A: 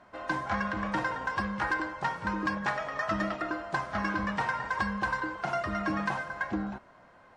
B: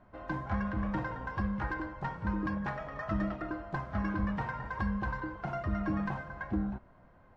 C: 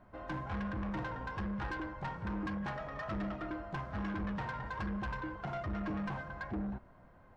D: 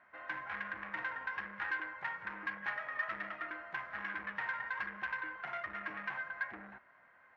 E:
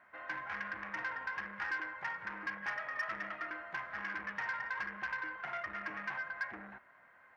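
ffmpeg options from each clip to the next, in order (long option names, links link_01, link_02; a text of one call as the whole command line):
ffmpeg -i in.wav -af "aemphasis=mode=reproduction:type=riaa,volume=-7dB" out.wav
ffmpeg -i in.wav -af "asoftclip=type=tanh:threshold=-33.5dB" out.wav
ffmpeg -i in.wav -af "bandpass=frequency=1900:width_type=q:width=2.8:csg=0,volume=10dB" out.wav
ffmpeg -i in.wav -af "asoftclip=type=tanh:threshold=-30.5dB,volume=1.5dB" out.wav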